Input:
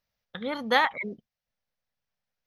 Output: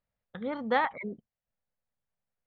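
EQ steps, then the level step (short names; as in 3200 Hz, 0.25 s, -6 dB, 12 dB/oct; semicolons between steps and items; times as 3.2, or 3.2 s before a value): tape spacing loss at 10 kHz 37 dB; 0.0 dB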